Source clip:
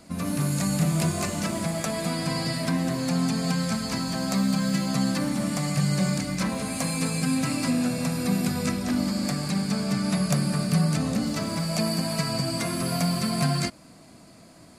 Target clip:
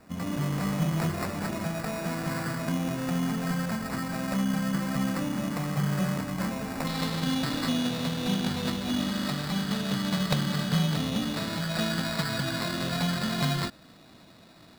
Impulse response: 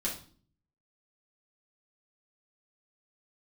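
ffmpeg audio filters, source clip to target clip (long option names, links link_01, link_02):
-af "acrusher=samples=14:mix=1:aa=0.000001,asetnsamples=nb_out_samples=441:pad=0,asendcmd='6.87 equalizer g 11.5',equalizer=frequency=3800:width_type=o:width=0.64:gain=-3,volume=-3.5dB"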